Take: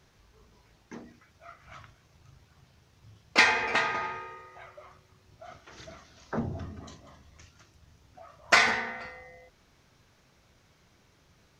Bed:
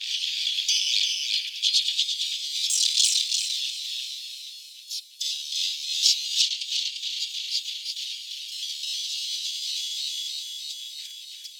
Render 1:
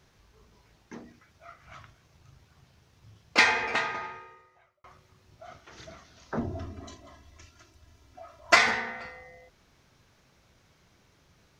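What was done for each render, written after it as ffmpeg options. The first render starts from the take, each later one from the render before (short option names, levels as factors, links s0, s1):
-filter_complex "[0:a]asettb=1/sr,asplit=3[s0][s1][s2];[s0]atrim=end=6.394[s3];[s1]atrim=start=6.39:end=8.56,asetpts=PTS-STARTPTS,afade=t=in:d=0.004:c=qsin,afade=t=out:st=2.166:d=0.004:c=qsin,aecho=1:1:3:0.65,atrim=end_sample=95697[s4];[s2]atrim=start=8.556[s5];[s3][s4]acrossfade=d=0.004:c1=hsin:c2=qsin[s6];[s6][s5]acrossfade=d=0.004:c1=qsin:c2=hsin,asplit=2[s7][s8];[s7]atrim=end=4.84,asetpts=PTS-STARTPTS,afade=t=out:st=3.55:d=1.29[s9];[s8]atrim=start=4.84,asetpts=PTS-STARTPTS,afade=t=in:d=0.004:c=hsin[s10];[s9][s10]concat=n=2:v=0:a=1"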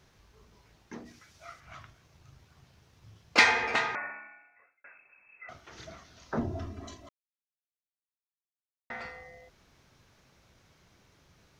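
-filter_complex "[0:a]asplit=3[s0][s1][s2];[s0]afade=t=out:st=1.05:d=0.02[s3];[s1]equalizer=f=7200:t=o:w=2.4:g=10,afade=t=in:st=1.05:d=0.02,afade=t=out:st=1.59:d=0.02[s4];[s2]afade=t=in:st=1.59:d=0.02[s5];[s3][s4][s5]amix=inputs=3:normalize=0,asettb=1/sr,asplit=3[s6][s7][s8];[s6]atrim=end=3.954[s9];[s7]atrim=start=3.95:end=5.49,asetpts=PTS-STARTPTS,afade=t=in:d=0.004:c=qsin,afade=t=out:st=1.536:d=0.004:c=qsin,lowpass=f=2300:t=q:w=0.5098,lowpass=f=2300:t=q:w=0.6013,lowpass=f=2300:t=q:w=0.9,lowpass=f=2300:t=q:w=2.563,afreqshift=-2700[s10];[s8]atrim=start=5.486[s11];[s9][s10]acrossfade=d=0.004:c1=hsin:c2=qsin[s12];[s12][s11]acrossfade=d=0.004:c1=qsin:c2=hsin,asplit=3[s13][s14][s15];[s13]atrim=end=7.09,asetpts=PTS-STARTPTS,afade=t=out:st=7.086:d=0.004:c=hsin[s16];[s14]atrim=start=7.09:end=8.9,asetpts=PTS-STARTPTS,volume=0[s17];[s15]atrim=start=8.9,asetpts=PTS-STARTPTS,afade=t=in:d=0.004:c=hsin[s18];[s16][s17][s18]concat=n=3:v=0:a=1"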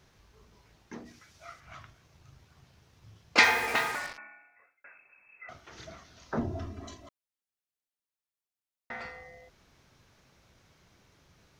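-filter_complex "[0:a]asettb=1/sr,asplit=3[s0][s1][s2];[s0]atrim=end=3.434[s3];[s1]atrim=start=3.43:end=4.18,asetpts=PTS-STARTPTS,afade=t=in:d=0.004:c=qsin,afade=t=out:st=0.746:d=0.004:c=qsin,acrusher=bits=5:mix=0:aa=0.5[s4];[s2]atrim=start=4.176[s5];[s3][s4]acrossfade=d=0.004:c1=hsin:c2=qsin[s6];[s6][s5]acrossfade=d=0.004:c1=qsin:c2=hsin"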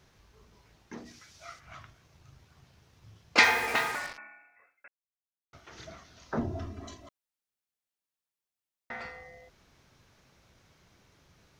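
-filter_complex "[0:a]asettb=1/sr,asplit=3[s0][s1][s2];[s0]atrim=end=0.974[s3];[s1]atrim=start=0.97:end=1.59,asetpts=PTS-STARTPTS,afade=t=in:d=0.004:c=qsin,afade=t=out:st=0.616:d=0.004:c=qsin,equalizer=f=5300:w=0.68:g=6[s4];[s2]atrim=start=1.586[s5];[s3][s4]acrossfade=d=0.004:c1=hsin:c2=qsin[s6];[s6][s5]acrossfade=d=0.004:c1=qsin:c2=hsin,asplit=3[s7][s8][s9];[s7]atrim=end=4.88,asetpts=PTS-STARTPTS,afade=t=out:st=4.876:d=0.004:c=hsin[s10];[s8]atrim=start=4.88:end=5.53,asetpts=PTS-STARTPTS,volume=0[s11];[s9]atrim=start=5.53,asetpts=PTS-STARTPTS,afade=t=in:d=0.004:c=hsin[s12];[s10][s11][s12]concat=n=3:v=0:a=1"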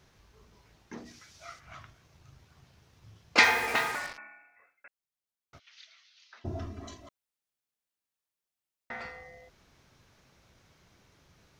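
-filter_complex "[0:a]asplit=3[s0][s1][s2];[s0]afade=t=out:st=5.58:d=0.02[s3];[s1]asuperpass=centerf=3400:order=4:qfactor=1.2,afade=t=in:st=5.58:d=0.02,afade=t=out:st=6.44:d=0.02[s4];[s2]afade=t=in:st=6.44:d=0.02[s5];[s3][s4][s5]amix=inputs=3:normalize=0"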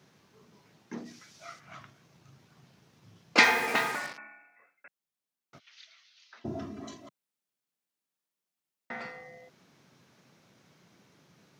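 -af "highpass=f=160:w=0.5412,highpass=f=160:w=1.3066,lowshelf=f=210:g=11.5"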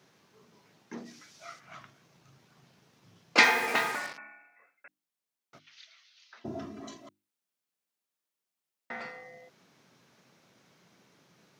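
-af "lowshelf=f=99:g=-9.5,bandreject=f=50:t=h:w=6,bandreject=f=100:t=h:w=6,bandreject=f=150:t=h:w=6,bandreject=f=200:t=h:w=6,bandreject=f=250:t=h:w=6,bandreject=f=300:t=h:w=6,bandreject=f=350:t=h:w=6"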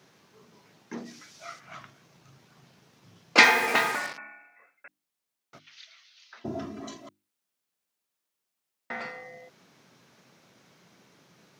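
-af "volume=1.58"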